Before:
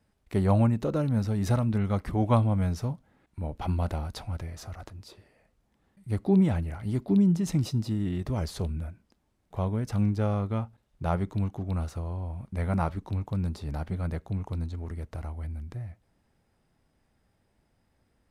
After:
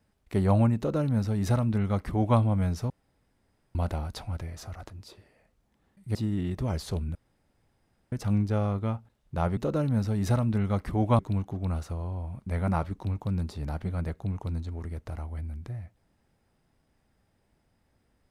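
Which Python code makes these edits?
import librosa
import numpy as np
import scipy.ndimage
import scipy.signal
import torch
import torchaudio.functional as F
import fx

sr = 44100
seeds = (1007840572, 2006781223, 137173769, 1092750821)

y = fx.edit(x, sr, fx.duplicate(start_s=0.77, length_s=1.62, to_s=11.25),
    fx.room_tone_fill(start_s=2.9, length_s=0.85),
    fx.cut(start_s=6.15, length_s=1.68),
    fx.room_tone_fill(start_s=8.83, length_s=0.97), tone=tone)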